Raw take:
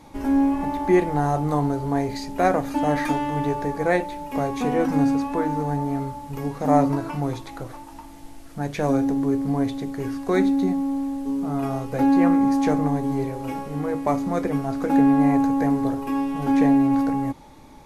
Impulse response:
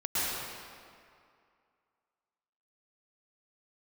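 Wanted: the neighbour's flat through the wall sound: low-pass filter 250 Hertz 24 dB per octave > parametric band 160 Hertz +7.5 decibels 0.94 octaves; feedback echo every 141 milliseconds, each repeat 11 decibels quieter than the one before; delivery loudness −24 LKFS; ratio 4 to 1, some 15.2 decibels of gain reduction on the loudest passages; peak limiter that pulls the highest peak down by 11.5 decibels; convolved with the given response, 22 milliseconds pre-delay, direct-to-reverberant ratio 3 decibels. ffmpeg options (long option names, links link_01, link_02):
-filter_complex "[0:a]acompressor=threshold=-33dB:ratio=4,alimiter=level_in=7.5dB:limit=-24dB:level=0:latency=1,volume=-7.5dB,aecho=1:1:141|282|423:0.282|0.0789|0.0221,asplit=2[link_01][link_02];[1:a]atrim=start_sample=2205,adelay=22[link_03];[link_02][link_03]afir=irnorm=-1:irlink=0,volume=-13dB[link_04];[link_01][link_04]amix=inputs=2:normalize=0,lowpass=frequency=250:width=0.5412,lowpass=frequency=250:width=1.3066,equalizer=frequency=160:width_type=o:width=0.94:gain=7.5,volume=13.5dB"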